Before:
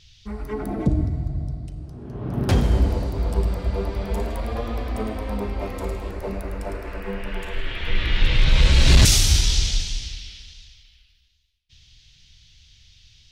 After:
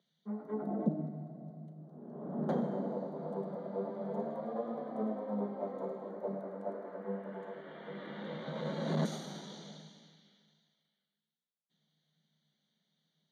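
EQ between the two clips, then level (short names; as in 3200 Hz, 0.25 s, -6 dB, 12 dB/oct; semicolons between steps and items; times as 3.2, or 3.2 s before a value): running mean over 17 samples; rippled Chebyshev high-pass 150 Hz, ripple 9 dB; -3.5 dB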